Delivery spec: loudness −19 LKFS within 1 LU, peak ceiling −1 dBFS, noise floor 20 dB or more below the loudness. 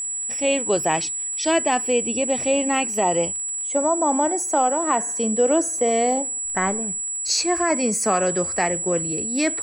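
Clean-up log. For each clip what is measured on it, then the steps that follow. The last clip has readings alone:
crackle rate 30 per second; interfering tone 7,800 Hz; level of the tone −25 dBFS; integrated loudness −21.0 LKFS; sample peak −9.0 dBFS; target loudness −19.0 LKFS
→ click removal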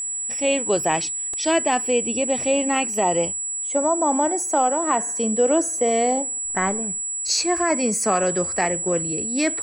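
crackle rate 0.42 per second; interfering tone 7,800 Hz; level of the tone −25 dBFS
→ notch filter 7,800 Hz, Q 30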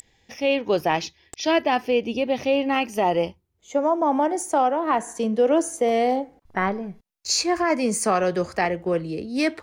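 interfering tone none found; integrated loudness −23.0 LKFS; sample peak −10.5 dBFS; target loudness −19.0 LKFS
→ level +4 dB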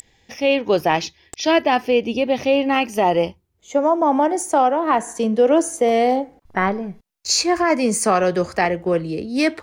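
integrated loudness −19.0 LKFS; sample peak −6.5 dBFS; background noise floor −62 dBFS

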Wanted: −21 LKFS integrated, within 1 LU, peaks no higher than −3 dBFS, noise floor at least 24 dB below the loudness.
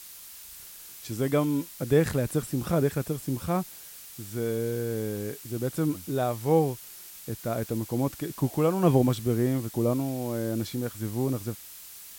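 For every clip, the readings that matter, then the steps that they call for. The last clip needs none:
background noise floor −46 dBFS; target noise floor −52 dBFS; integrated loudness −28.0 LKFS; sample peak −9.5 dBFS; target loudness −21.0 LKFS
→ broadband denoise 6 dB, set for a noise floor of −46 dBFS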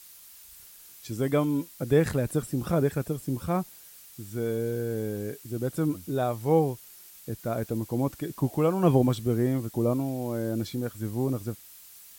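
background noise floor −50 dBFS; target noise floor −52 dBFS
→ broadband denoise 6 dB, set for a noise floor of −50 dBFS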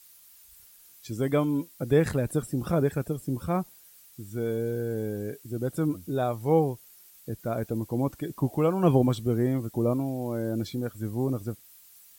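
background noise floor −54 dBFS; integrated loudness −28.5 LKFS; sample peak −9.5 dBFS; target loudness −21.0 LKFS
→ level +7.5 dB
brickwall limiter −3 dBFS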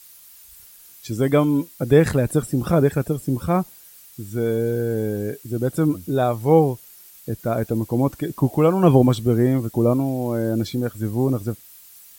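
integrated loudness −21.0 LKFS; sample peak −3.0 dBFS; background noise floor −47 dBFS

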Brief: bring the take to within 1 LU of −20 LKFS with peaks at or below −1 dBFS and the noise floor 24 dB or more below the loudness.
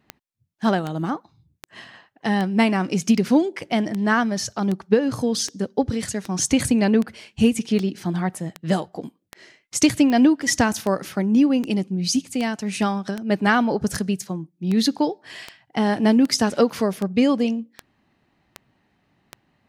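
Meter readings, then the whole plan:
number of clicks 26; integrated loudness −21.5 LKFS; sample peak −4.5 dBFS; target loudness −20.0 LKFS
→ click removal
level +1.5 dB

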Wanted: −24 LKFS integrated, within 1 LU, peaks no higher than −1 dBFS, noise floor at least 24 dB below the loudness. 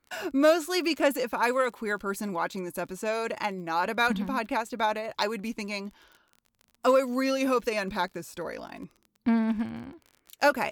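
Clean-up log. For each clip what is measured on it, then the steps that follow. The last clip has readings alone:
crackle rate 30 per second; integrated loudness −28.0 LKFS; sample peak −11.5 dBFS; target loudness −24.0 LKFS
→ click removal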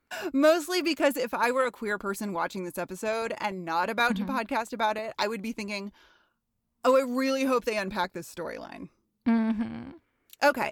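crackle rate 0.28 per second; integrated loudness −28.0 LKFS; sample peak −11.5 dBFS; target loudness −24.0 LKFS
→ level +4 dB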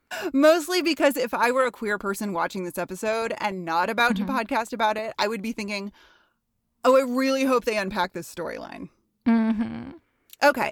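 integrated loudness −24.0 LKFS; sample peak −7.5 dBFS; background noise floor −73 dBFS

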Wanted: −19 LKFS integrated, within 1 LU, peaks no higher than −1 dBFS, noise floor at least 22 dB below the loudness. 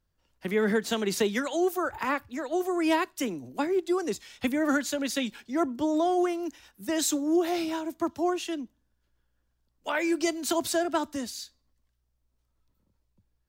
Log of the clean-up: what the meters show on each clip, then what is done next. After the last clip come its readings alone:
integrated loudness −28.5 LKFS; sample peak −14.0 dBFS; target loudness −19.0 LKFS
→ level +9.5 dB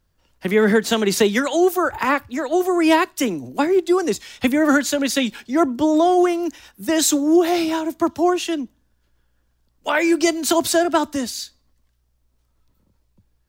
integrated loudness −19.0 LKFS; sample peak −4.5 dBFS; background noise floor −66 dBFS

